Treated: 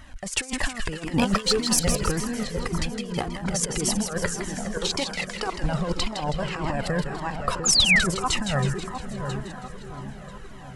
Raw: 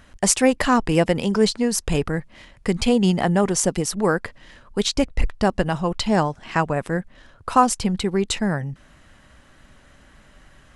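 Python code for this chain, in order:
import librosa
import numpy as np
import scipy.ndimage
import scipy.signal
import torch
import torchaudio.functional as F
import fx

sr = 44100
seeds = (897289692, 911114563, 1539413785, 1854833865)

y = fx.reverse_delay_fb(x, sr, ms=495, feedback_pct=45, wet_db=-14.0)
y = fx.highpass(y, sr, hz=580.0, slope=12, at=(4.91, 5.58))
y = fx.over_compress(y, sr, threshold_db=-24.0, ratio=-0.5)
y = fx.leveller(y, sr, passes=1, at=(1.16, 1.97))
y = fx.echo_split(y, sr, split_hz=1300.0, low_ms=699, high_ms=161, feedback_pct=52, wet_db=-7)
y = fx.spec_paint(y, sr, seeds[0], shape='fall', start_s=7.65, length_s=0.41, low_hz=1300.0, high_hz=7400.0, level_db=-17.0)
y = fx.transient(y, sr, attack_db=-3, sustain_db=5, at=(7.52, 8.1), fade=0.02)
y = fx.comb_cascade(y, sr, direction='falling', hz=1.8)
y = y * librosa.db_to_amplitude(2.5)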